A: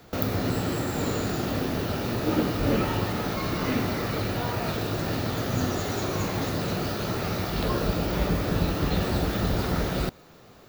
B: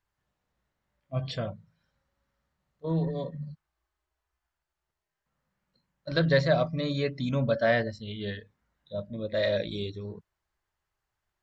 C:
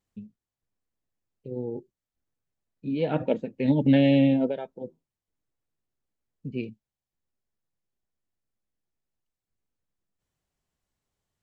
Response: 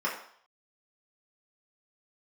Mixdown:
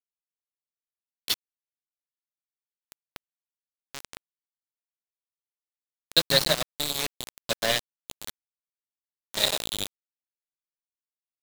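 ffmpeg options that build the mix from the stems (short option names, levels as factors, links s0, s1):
-filter_complex "[0:a]highpass=f=99:w=0.5412,highpass=f=99:w=1.3066,acrossover=split=190 2900:gain=0.0631 1 0.251[s0][s1][s2];[s0][s1][s2]amix=inputs=3:normalize=0,volume=0.282[s3];[1:a]equalizer=f=94:t=o:w=1.2:g=-5.5,aexciter=amount=6.8:drive=4.4:freq=2500,volume=0.944[s4];[2:a]equalizer=f=240:w=2.9:g=-10.5,volume=0.422[s5];[s3][s4][s5]amix=inputs=3:normalize=0,aeval=exprs='val(0)*gte(abs(val(0)),0.112)':c=same"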